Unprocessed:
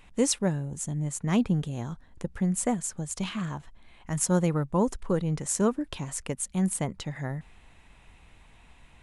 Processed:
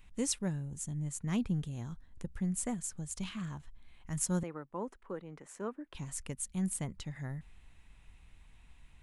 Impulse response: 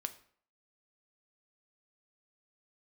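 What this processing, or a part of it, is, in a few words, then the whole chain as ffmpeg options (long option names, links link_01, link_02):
smiley-face EQ: -filter_complex "[0:a]asettb=1/sr,asplit=3[link_01][link_02][link_03];[link_01]atrim=end=4.434[link_04];[link_02]atrim=start=4.43:end=5.95,asetpts=PTS-STARTPTS,afade=type=in:duration=0.004:curve=qsin,afade=type=out:start_time=1.516:duration=0.004:curve=qsin,acrossover=split=270 2500:gain=0.0631 1 0.126[link_05][link_06][link_07];[link_05][link_06][link_07]amix=inputs=3:normalize=0[link_08];[link_03]atrim=start=5.946[link_09];[link_04][link_08]acrossfade=duration=0.004:curve1=hsin:curve2=qsin[link_10];[link_10][link_09]acrossfade=duration=0.004:curve1=qsin:curve2=hsin,lowshelf=frequency=88:gain=8,equalizer=frequency=610:width_type=o:width=1.8:gain=-5.5,highshelf=frequency=9700:gain=4.5,volume=-8dB"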